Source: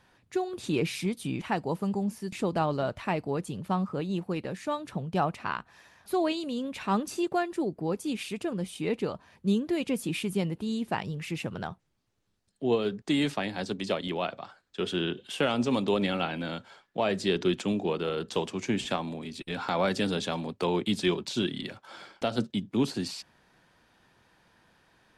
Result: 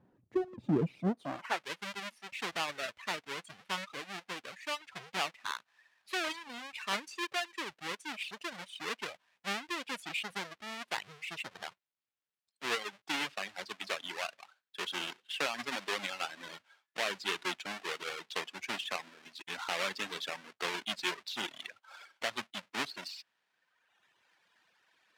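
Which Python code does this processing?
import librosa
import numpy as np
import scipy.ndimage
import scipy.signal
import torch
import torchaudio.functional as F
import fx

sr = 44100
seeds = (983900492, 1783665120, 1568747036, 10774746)

y = fx.halfwave_hold(x, sr)
y = fx.filter_sweep_bandpass(y, sr, from_hz=230.0, to_hz=2600.0, start_s=0.97, end_s=1.65, q=0.87)
y = fx.dereverb_blind(y, sr, rt60_s=1.4)
y = F.gain(torch.from_numpy(y), -2.5).numpy()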